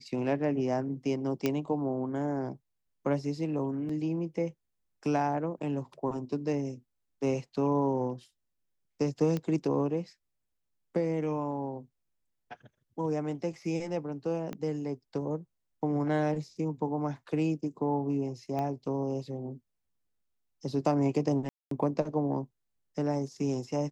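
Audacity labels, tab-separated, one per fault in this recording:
1.460000	1.460000	click −14 dBFS
3.890000	3.890000	drop-out 4.2 ms
9.370000	9.370000	click −20 dBFS
14.530000	14.530000	click −24 dBFS
18.590000	18.590000	click −22 dBFS
21.490000	21.710000	drop-out 223 ms

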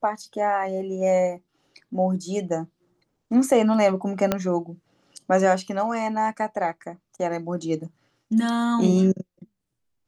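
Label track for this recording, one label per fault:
4.320000	4.320000	click −7 dBFS

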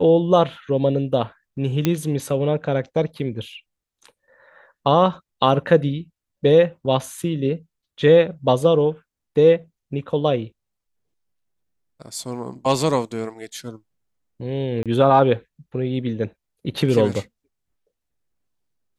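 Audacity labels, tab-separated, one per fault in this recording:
1.850000	1.850000	click −6 dBFS
14.830000	14.860000	drop-out 27 ms

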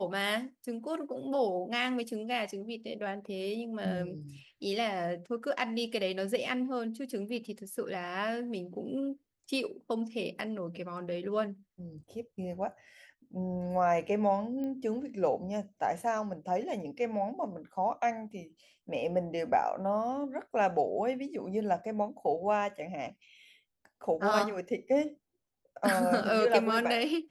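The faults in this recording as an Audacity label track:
14.640000	14.640000	click −28 dBFS

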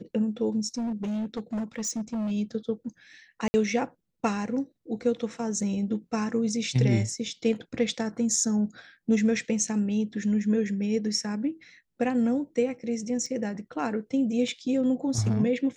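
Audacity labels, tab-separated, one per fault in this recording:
0.780000	2.320000	clipping −27 dBFS
3.480000	3.540000	drop-out 60 ms
13.260000	13.260000	drop-out 3.6 ms
14.480000	14.480000	drop-out 2.6 ms

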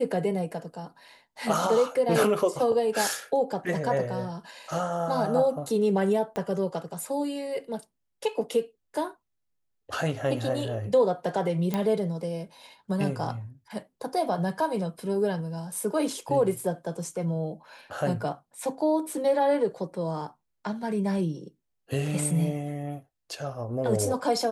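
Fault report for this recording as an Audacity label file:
6.360000	6.360000	click −18 dBFS
11.740000	11.740000	click −14 dBFS

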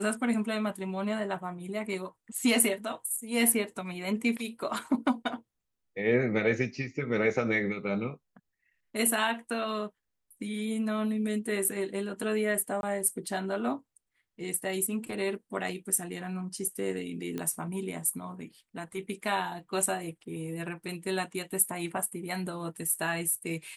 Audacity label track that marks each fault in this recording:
12.810000	12.830000	drop-out 21 ms
17.380000	17.380000	click −21 dBFS

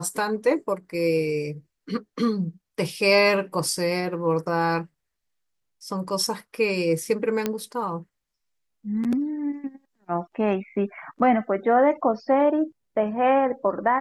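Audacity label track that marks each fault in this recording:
7.460000	7.460000	click −10 dBFS

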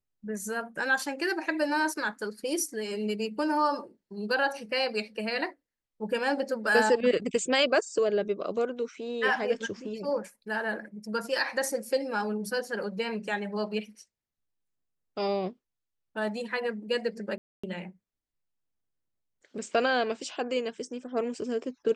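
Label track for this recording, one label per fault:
17.380000	17.640000	drop-out 255 ms

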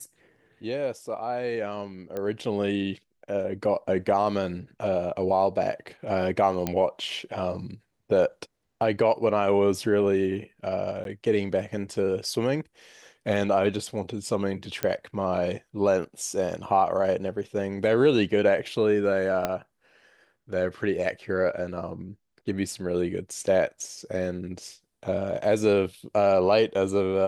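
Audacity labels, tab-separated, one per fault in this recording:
2.170000	2.170000	click −20 dBFS
6.670000	6.670000	click −12 dBFS
11.040000	11.050000	drop-out 12 ms
14.830000	14.830000	click −10 dBFS
19.450000	19.450000	click −11 dBFS

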